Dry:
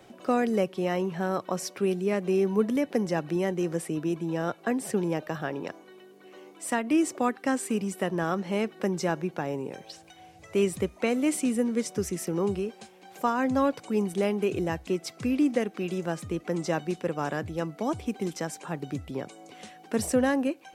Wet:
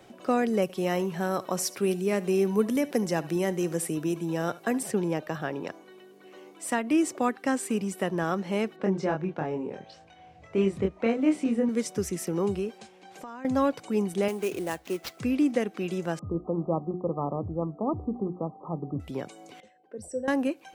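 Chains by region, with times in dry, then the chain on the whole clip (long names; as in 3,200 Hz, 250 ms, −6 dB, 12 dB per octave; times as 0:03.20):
0:00.62–0:04.83: high-shelf EQ 6,500 Hz +11 dB + single-tap delay 73 ms −19 dB
0:08.76–0:11.69: head-to-tape spacing loss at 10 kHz 21 dB + double-tracking delay 26 ms −3 dB
0:12.78–0:13.45: low-pass filter 8,600 Hz + downward compressor 4 to 1, threshold −40 dBFS
0:14.28–0:15.20: high-pass filter 63 Hz + parametric band 84 Hz −14.5 dB 2.3 octaves + sample-rate reduction 9,200 Hz, jitter 20%
0:16.19–0:19.00: linear-phase brick-wall low-pass 1,300 Hz + low-shelf EQ 160 Hz +5 dB + mains-hum notches 60/120/180/240/300/360/420 Hz
0:19.60–0:20.28: spectral envelope exaggerated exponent 2 + tuned comb filter 520 Hz, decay 0.31 s, mix 80%
whole clip: no processing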